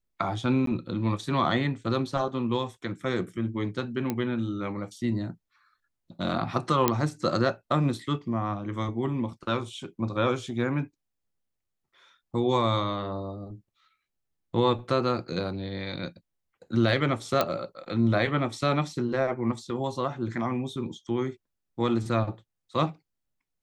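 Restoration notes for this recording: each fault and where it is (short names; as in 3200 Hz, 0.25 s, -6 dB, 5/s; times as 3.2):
0.66–0.67 gap 13 ms
4.1 pop -14 dBFS
6.88 pop -6 dBFS
17.41 pop -9 dBFS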